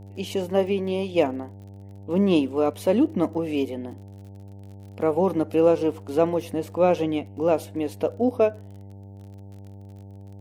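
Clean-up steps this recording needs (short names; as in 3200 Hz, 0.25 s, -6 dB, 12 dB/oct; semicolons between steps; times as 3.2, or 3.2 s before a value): de-click; de-hum 98.8 Hz, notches 9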